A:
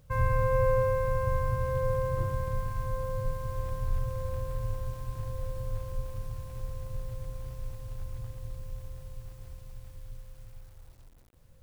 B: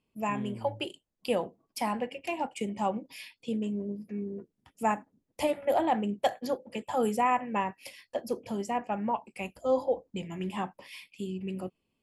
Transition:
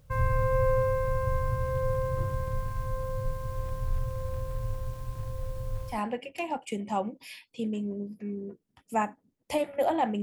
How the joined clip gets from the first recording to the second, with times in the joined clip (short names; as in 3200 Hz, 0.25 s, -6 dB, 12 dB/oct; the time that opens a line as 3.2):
A
5.93 switch to B from 1.82 s, crossfade 0.12 s